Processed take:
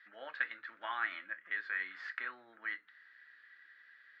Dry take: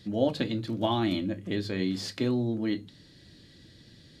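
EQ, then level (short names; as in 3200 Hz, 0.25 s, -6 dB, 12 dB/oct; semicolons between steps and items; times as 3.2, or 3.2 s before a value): Butterworth band-pass 1600 Hz, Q 2.6; +9.5 dB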